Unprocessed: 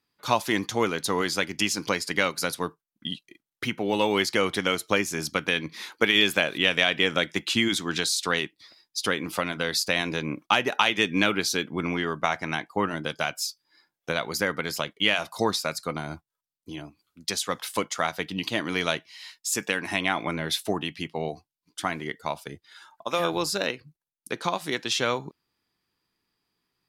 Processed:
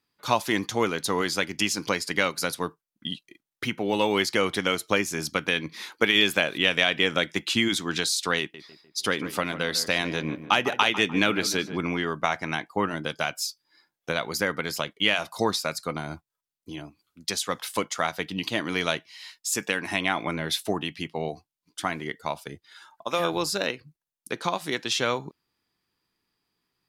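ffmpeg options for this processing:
ffmpeg -i in.wav -filter_complex "[0:a]asettb=1/sr,asplit=3[link_01][link_02][link_03];[link_01]atrim=end=8.394[link_04];[link_02]atrim=start=8.39:end=11.78,asetpts=PTS-STARTPTS,afade=type=in:duration=0.004:curve=qsin,afade=type=out:start_time=3.386:duration=0.004:curve=qsin,asplit=2[link_05][link_06];[link_06]adelay=150,lowpass=frequency=2000:poles=1,volume=-12dB,asplit=2[link_07][link_08];[link_08]adelay=150,lowpass=frequency=2000:poles=1,volume=0.47,asplit=2[link_09][link_10];[link_10]adelay=150,lowpass=frequency=2000:poles=1,volume=0.47,asplit=2[link_11][link_12];[link_12]adelay=150,lowpass=frequency=2000:poles=1,volume=0.47,asplit=2[link_13][link_14];[link_14]adelay=150,lowpass=frequency=2000:poles=1,volume=0.47[link_15];[link_05][link_07][link_09][link_11][link_13][link_15]amix=inputs=6:normalize=0,atrim=end_sample=149499[link_16];[link_03]atrim=start=11.776[link_17];[link_04][link_16]acrossfade=duration=0.004:curve1=hsin:curve2=qsin[link_18];[link_18][link_17]acrossfade=duration=0.004:curve1=qsin:curve2=hsin" out.wav

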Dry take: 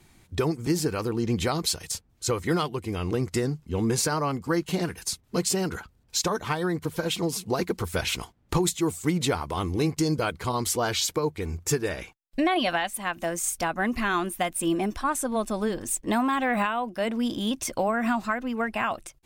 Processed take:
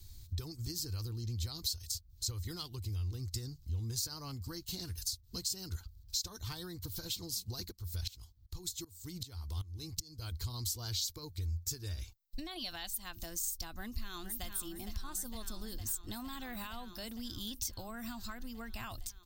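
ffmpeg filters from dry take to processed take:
ffmpeg -i in.wav -filter_complex "[0:a]asplit=3[link_01][link_02][link_03];[link_01]afade=type=out:start_time=7.7:duration=0.02[link_04];[link_02]aeval=exprs='val(0)*pow(10,-22*if(lt(mod(-2.6*n/s,1),2*abs(-2.6)/1000),1-mod(-2.6*n/s,1)/(2*abs(-2.6)/1000),(mod(-2.6*n/s,1)-2*abs(-2.6)/1000)/(1-2*abs(-2.6)/1000))/20)':channel_layout=same,afade=type=in:start_time=7.7:duration=0.02,afade=type=out:start_time=10.31:duration=0.02[link_05];[link_03]afade=type=in:start_time=10.31:duration=0.02[link_06];[link_04][link_05][link_06]amix=inputs=3:normalize=0,asplit=2[link_07][link_08];[link_08]afade=type=in:start_time=13.7:duration=0.01,afade=type=out:start_time=14.45:duration=0.01,aecho=0:1:460|920|1380|1840|2300|2760|3220|3680|4140|4600|5060|5520:0.375837|0.30067|0.240536|0.192429|0.153943|0.123154|0.0985235|0.0788188|0.0630551|0.050444|0.0403552|0.0322842[link_09];[link_07][link_09]amix=inputs=2:normalize=0,firequalizer=gain_entry='entry(100,0);entry(150,-20);entry(320,-14);entry(570,-23);entry(2300,-25);entry(4200,-4);entry(10000,-13);entry(15000,3)':delay=0.05:min_phase=1,acompressor=threshold=-48dB:ratio=3,equalizer=frequency=410:width=0.79:gain=-10,volume=10.5dB" out.wav

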